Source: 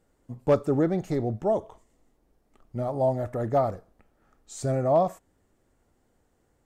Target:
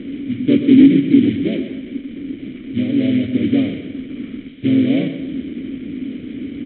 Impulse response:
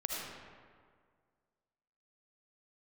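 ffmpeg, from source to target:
-filter_complex "[0:a]aeval=exprs='val(0)+0.5*0.0335*sgn(val(0))':c=same,tiltshelf=f=860:g=9.5,bandreject=f=50:t=h:w=6,bandreject=f=100:t=h:w=6,bandreject=f=150:t=h:w=6,aresample=8000,acrusher=bits=4:mode=log:mix=0:aa=0.000001,aresample=44100,asplit=2[a][b];[b]asetrate=37084,aresample=44100,atempo=1.18921,volume=-1dB[c];[a][c]amix=inputs=2:normalize=0,asplit=3[d][e][f];[d]bandpass=f=270:t=q:w=8,volume=0dB[g];[e]bandpass=f=2.29k:t=q:w=8,volume=-6dB[h];[f]bandpass=f=3.01k:t=q:w=8,volume=-9dB[i];[g][h][i]amix=inputs=3:normalize=0,asplit=2[j][k];[k]aecho=0:1:125|250|375|500|625:0.299|0.131|0.0578|0.0254|0.0112[l];[j][l]amix=inputs=2:normalize=0,apsyclip=13.5dB,volume=-1.5dB"

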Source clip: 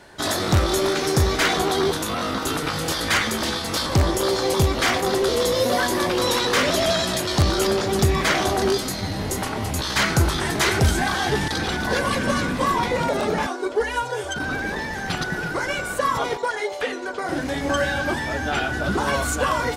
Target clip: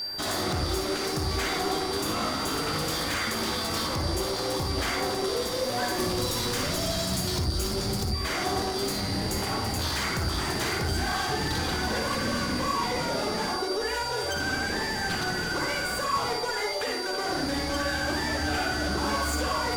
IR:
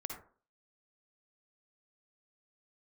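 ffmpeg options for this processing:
-filter_complex "[0:a]asettb=1/sr,asplit=3[a][b][c];[a]atrim=end=5.984[d];[b]atrim=start=5.98:end=8.12,asetpts=PTS-STARTPTS,afade=t=in:d=0.004:c=qsin,afade=t=out:st=2.136:d=0.004:c=qsin,bass=f=250:g=13,treble=f=4k:g=10[e];[c]atrim=start=8.116[f];[d][e]acrossfade=d=0.004:c1=hsin:c2=qsin[g];[g][f]acrossfade=d=0.004:c1=qsin:c2=hsin,acompressor=threshold=-23dB:ratio=6,aeval=exprs='val(0)+0.0355*sin(2*PI*4700*n/s)':c=same,asoftclip=type=tanh:threshold=-27.5dB[h];[1:a]atrim=start_sample=2205[i];[h][i]afir=irnorm=-1:irlink=0,volume=4dB"

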